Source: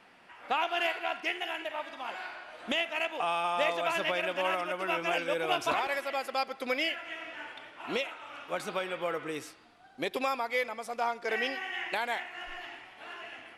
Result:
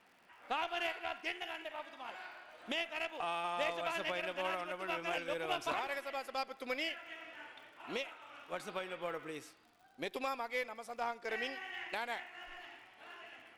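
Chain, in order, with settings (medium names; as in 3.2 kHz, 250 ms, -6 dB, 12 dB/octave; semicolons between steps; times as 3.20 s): Chebyshev shaper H 2 -18 dB, 4 -22 dB, 7 -33 dB, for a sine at -14.5 dBFS; crackle 79 per s -49 dBFS; trim -7 dB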